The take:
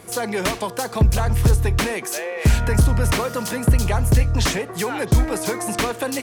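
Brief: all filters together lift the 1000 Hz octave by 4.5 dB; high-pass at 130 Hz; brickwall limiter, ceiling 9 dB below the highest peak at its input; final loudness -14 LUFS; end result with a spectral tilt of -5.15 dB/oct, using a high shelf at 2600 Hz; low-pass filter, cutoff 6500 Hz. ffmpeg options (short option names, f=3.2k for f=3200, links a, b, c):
-af "highpass=130,lowpass=6.5k,equalizer=f=1k:t=o:g=7,highshelf=f=2.6k:g=-8,volume=11dB,alimiter=limit=-3.5dB:level=0:latency=1"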